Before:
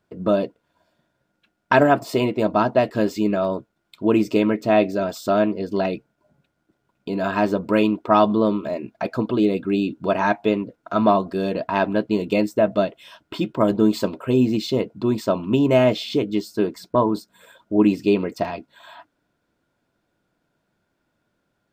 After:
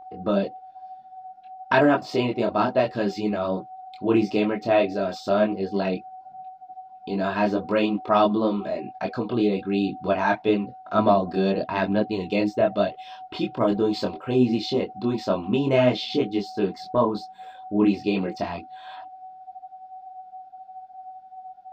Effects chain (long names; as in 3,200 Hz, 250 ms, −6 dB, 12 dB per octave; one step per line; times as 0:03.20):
high shelf with overshoot 7,100 Hz −13.5 dB, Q 1.5
steady tone 750 Hz −36 dBFS
multi-voice chorus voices 4, 0.99 Hz, delay 23 ms, depth 3 ms